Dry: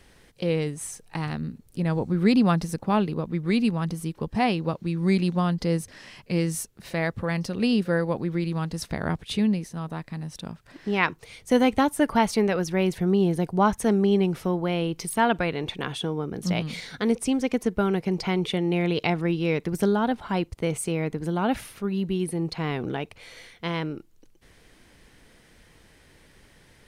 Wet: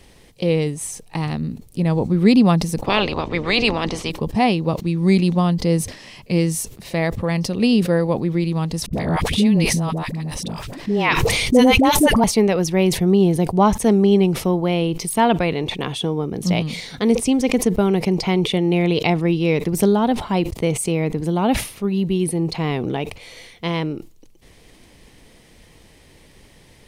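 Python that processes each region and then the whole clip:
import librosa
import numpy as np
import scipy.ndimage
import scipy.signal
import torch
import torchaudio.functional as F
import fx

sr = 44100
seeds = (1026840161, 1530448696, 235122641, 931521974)

y = fx.spec_clip(x, sr, under_db=27, at=(2.85, 4.1), fade=0.02)
y = fx.air_absorb(y, sr, metres=120.0, at=(2.85, 4.1), fade=0.02)
y = fx.chain(y, sr, fx.dispersion(late='highs', ms=72.0, hz=640.0),
    fx.sustainer(db_per_s=21.0), at=(8.86, 12.24))
y = fx.peak_eq(y, sr, hz=1500.0, db=-9.5, octaves=0.51)
y = fx.sustainer(y, sr, db_per_s=120.0)
y = F.gain(torch.from_numpy(y), 6.5).numpy()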